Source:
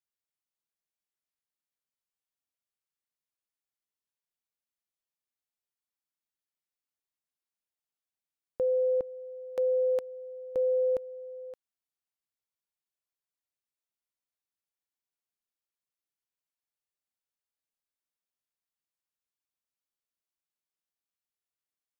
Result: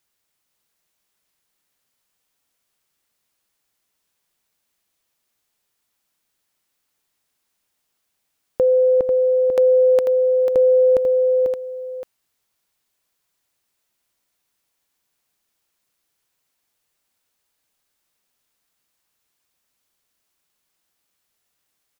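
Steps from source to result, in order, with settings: in parallel at +1.5 dB: compressor with a negative ratio -33 dBFS, ratio -1; on the sum: delay 493 ms -6.5 dB; trim +8 dB

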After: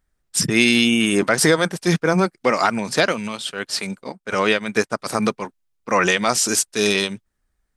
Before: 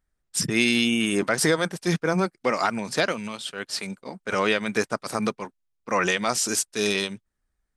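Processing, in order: 4.12–4.99 s: upward expansion 1.5:1, over -39 dBFS; trim +5.5 dB

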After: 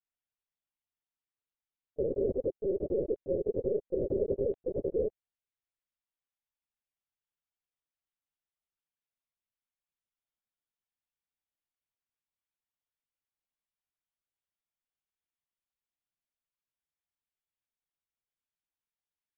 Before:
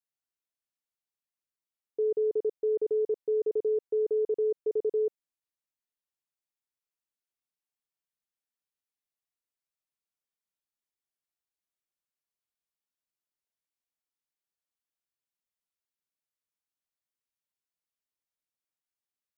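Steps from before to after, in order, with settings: whisper effect; LPC vocoder at 8 kHz pitch kept; trim -3 dB

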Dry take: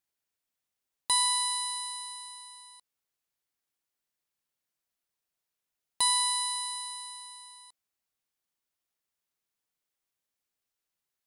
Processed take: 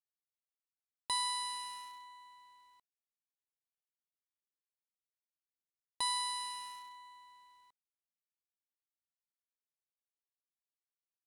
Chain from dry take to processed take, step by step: local Wiener filter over 9 samples; companded quantiser 6-bit; treble shelf 8.2 kHz -11.5 dB; trim -5.5 dB

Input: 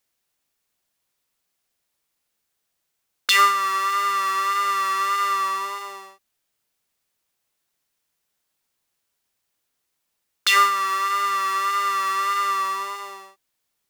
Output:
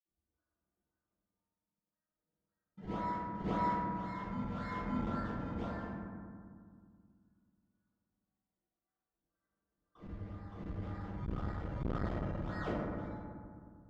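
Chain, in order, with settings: vocoder on a note that slides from D4, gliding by +7 st; gate -34 dBFS, range -42 dB; high-order bell 1.8 kHz +8.5 dB; upward compressor, threshold -28 dBFS; wah-wah 0.43 Hz 700–1600 Hz, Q 13; decimation with a swept rate 27×, swing 100% 1.9 Hz; distance through air 180 m; reverse echo 569 ms -4.5 dB; reverberation RT60 2.1 s, pre-delay 47 ms; transformer saturation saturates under 300 Hz; trim +4 dB

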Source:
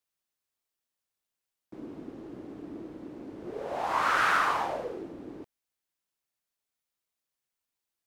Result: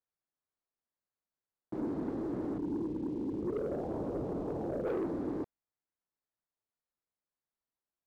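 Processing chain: local Wiener filter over 15 samples; 2.58–4.87 s: inverse Chebyshev low-pass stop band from 1.5 kHz, stop band 60 dB; waveshaping leveller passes 2; trim +1.5 dB

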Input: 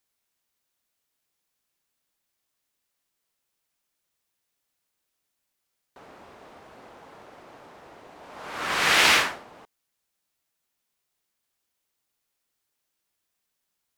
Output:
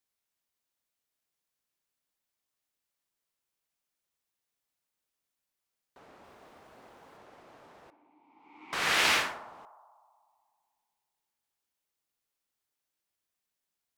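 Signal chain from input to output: 6.24–7.17 s: treble shelf 11 kHz +7.5 dB; 7.90–8.73 s: vowel filter u; band-passed feedback delay 62 ms, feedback 84%, band-pass 850 Hz, level -14 dB; trim -7 dB

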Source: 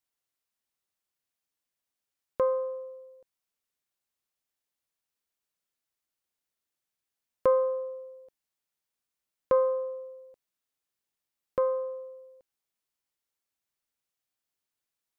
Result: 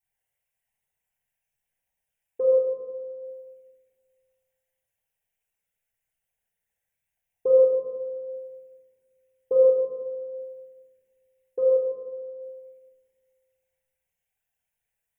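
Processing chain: resonances exaggerated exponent 3; dynamic bell 300 Hz, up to +5 dB, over -47 dBFS, Q 3; static phaser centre 1.2 kHz, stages 6; simulated room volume 1600 m³, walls mixed, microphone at 3.6 m; trim +1 dB

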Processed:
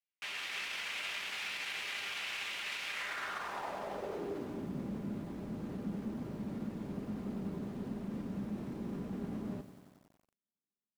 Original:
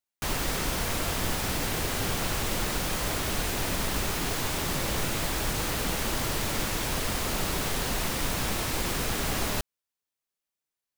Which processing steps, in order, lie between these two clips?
level rider gain up to 10 dB; peak limiter -18 dBFS, peak gain reduction 11.5 dB; feedback comb 200 Hz, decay 0.16 s, harmonics all, mix 60%; band-pass sweep 2.5 kHz -> 220 Hz, 2.86–4.67 s; bit-crushed delay 92 ms, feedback 80%, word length 10-bit, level -13.5 dB; trim +3 dB

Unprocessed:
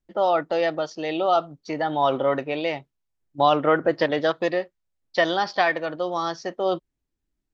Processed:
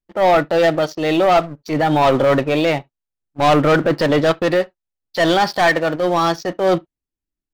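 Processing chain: dynamic bell 130 Hz, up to +7 dB, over -42 dBFS, Q 1; waveshaping leveller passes 3; transient shaper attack -6 dB, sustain -2 dB; on a send: reverberation, pre-delay 3 ms, DRR 22.5 dB

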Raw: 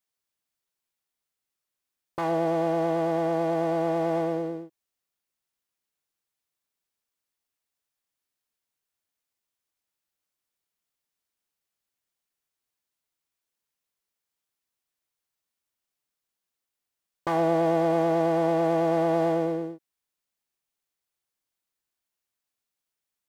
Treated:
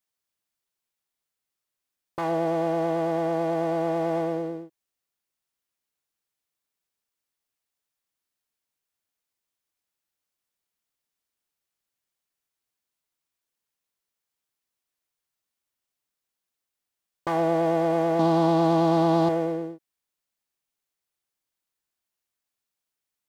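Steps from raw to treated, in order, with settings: 18.19–19.29 s: ten-band graphic EQ 125 Hz +4 dB, 250 Hz +11 dB, 500 Hz -6 dB, 1 kHz +8 dB, 2 kHz -7 dB, 4 kHz +12 dB

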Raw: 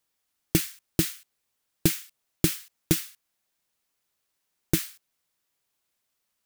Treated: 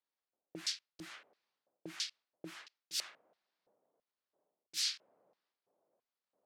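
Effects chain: level-controlled noise filter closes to 880 Hz, open at -21 dBFS; peak limiter -12.5 dBFS, peak gain reduction 5.5 dB; high-pass 150 Hz; bass shelf 350 Hz +10 dB; transient shaper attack -7 dB, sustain +9 dB; reverse; compression 12:1, threshold -41 dBFS, peak gain reduction 20.5 dB; reverse; hum notches 50/100/150/200/250/300/350 Hz; LFO band-pass square 1.5 Hz 580–4700 Hz; trim +13.5 dB

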